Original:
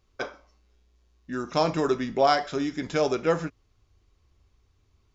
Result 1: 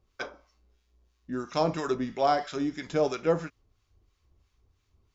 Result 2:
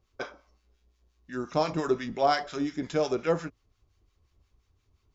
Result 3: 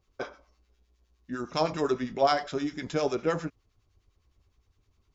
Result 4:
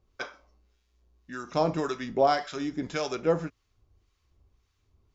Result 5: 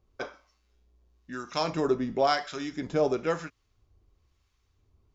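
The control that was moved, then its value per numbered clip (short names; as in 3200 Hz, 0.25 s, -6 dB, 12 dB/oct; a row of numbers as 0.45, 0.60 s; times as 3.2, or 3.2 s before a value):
harmonic tremolo, rate: 3, 5.7, 9.8, 1.8, 1 Hz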